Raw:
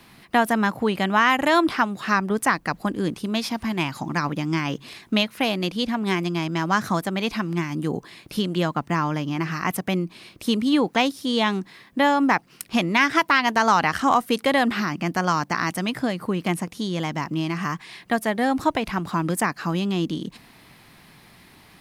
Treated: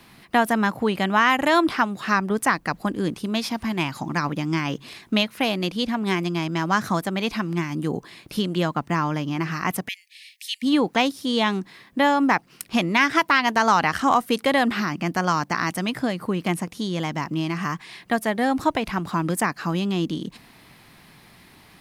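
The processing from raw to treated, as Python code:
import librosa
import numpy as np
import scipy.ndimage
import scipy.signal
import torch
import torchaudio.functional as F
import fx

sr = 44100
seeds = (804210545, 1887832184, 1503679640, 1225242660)

y = fx.brickwall_highpass(x, sr, low_hz=1700.0, at=(9.87, 10.62), fade=0.02)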